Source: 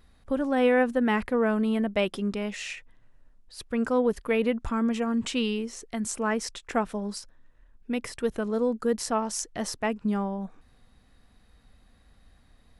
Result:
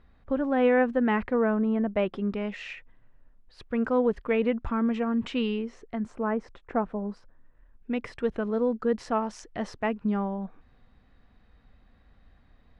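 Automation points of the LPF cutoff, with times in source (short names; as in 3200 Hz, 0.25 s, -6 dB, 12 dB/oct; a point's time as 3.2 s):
1.31 s 2400 Hz
1.66 s 1300 Hz
2.45 s 2600 Hz
5.6 s 2600 Hz
6.22 s 1200 Hz
7.05 s 1200 Hz
7.92 s 2800 Hz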